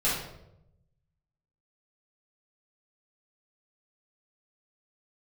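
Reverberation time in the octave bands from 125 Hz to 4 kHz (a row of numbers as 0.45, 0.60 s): 1.4, 1.1, 0.95, 0.70, 0.60, 0.55 s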